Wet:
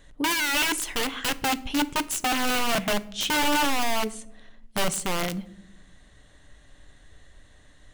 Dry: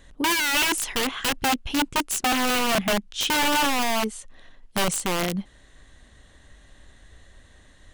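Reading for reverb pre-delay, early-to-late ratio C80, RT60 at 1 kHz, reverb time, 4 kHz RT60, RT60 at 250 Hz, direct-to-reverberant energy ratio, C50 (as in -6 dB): 7 ms, 23.0 dB, 0.60 s, 0.80 s, 0.40 s, 1.3 s, 12.0 dB, 20.0 dB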